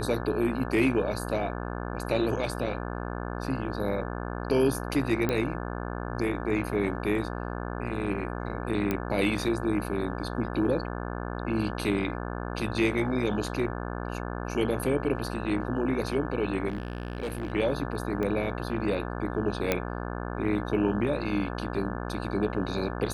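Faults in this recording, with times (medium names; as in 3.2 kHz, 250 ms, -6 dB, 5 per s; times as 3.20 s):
buzz 60 Hz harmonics 29 -34 dBFS
5.29 s: pop -14 dBFS
8.91 s: pop -14 dBFS
16.68–17.52 s: clipped -28 dBFS
18.23 s: pop -19 dBFS
19.72 s: pop -10 dBFS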